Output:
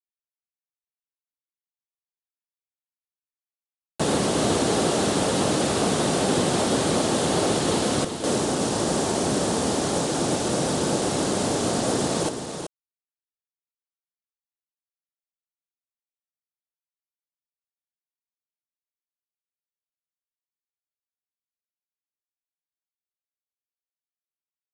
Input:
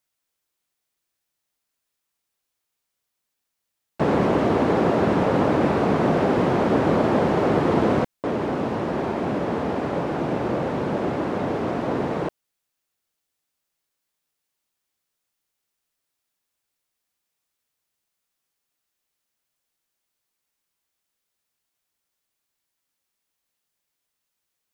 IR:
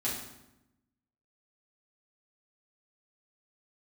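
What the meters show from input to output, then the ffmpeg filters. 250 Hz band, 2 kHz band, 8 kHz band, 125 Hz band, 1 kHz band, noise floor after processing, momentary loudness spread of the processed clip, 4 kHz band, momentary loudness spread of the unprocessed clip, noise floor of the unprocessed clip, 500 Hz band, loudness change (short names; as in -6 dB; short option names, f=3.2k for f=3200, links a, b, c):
-2.0 dB, -0.5 dB, n/a, -2.0 dB, -2.0 dB, under -85 dBFS, 3 LU, +12.0 dB, 6 LU, -81 dBFS, -2.0 dB, -1.0 dB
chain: -filter_complex "[0:a]bandreject=f=990:w=21,afftfilt=real='re*gte(hypot(re,im),0.00631)':imag='im*gte(hypot(re,im),0.00631)':win_size=1024:overlap=0.75,acrossover=split=1900[a][b];[a]alimiter=limit=-14.5dB:level=0:latency=1:release=347[c];[c][b]amix=inputs=2:normalize=0,acrusher=bits=5:mix=0:aa=0.5,aexciter=amount=4.7:drive=4.8:freq=3.2k,asplit=2[d][e];[e]aecho=0:1:378:0.422[f];[d][f]amix=inputs=2:normalize=0,aresample=22050,aresample=44100"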